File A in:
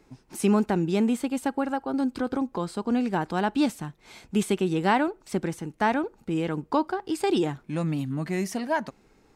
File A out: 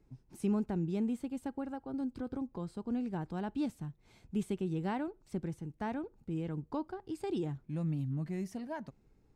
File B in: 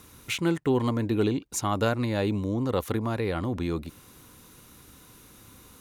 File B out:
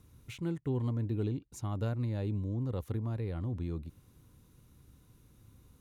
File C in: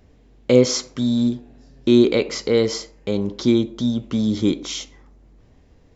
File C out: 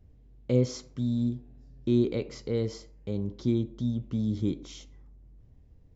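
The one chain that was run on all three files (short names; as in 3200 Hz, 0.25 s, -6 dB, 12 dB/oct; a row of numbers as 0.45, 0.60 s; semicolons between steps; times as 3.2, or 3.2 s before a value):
EQ curve 130 Hz 0 dB, 200 Hz -7 dB, 1300 Hz -16 dB; gain -2 dB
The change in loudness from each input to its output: -11.0, -8.0, -10.0 LU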